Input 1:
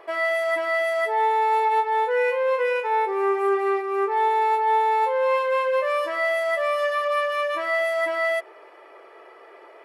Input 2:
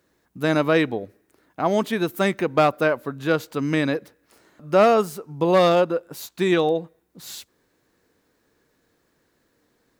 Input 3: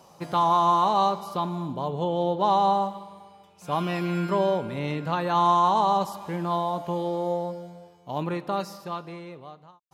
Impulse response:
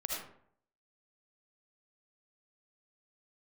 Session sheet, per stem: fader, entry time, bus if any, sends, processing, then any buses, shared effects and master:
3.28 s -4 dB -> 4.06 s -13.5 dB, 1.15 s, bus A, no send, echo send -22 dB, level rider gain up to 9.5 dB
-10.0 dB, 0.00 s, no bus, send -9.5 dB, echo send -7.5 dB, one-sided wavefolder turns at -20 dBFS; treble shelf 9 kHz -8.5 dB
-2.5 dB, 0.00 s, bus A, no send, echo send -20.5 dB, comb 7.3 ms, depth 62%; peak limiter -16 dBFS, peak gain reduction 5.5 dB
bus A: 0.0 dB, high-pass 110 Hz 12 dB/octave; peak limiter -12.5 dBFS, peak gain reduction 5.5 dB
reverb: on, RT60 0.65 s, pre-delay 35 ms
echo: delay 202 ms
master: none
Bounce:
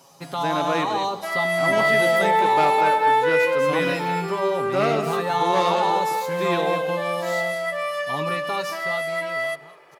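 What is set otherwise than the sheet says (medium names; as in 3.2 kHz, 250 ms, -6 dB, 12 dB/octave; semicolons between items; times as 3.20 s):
stem 2: missing one-sided wavefolder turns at -20 dBFS; master: extra treble shelf 2.6 kHz +8.5 dB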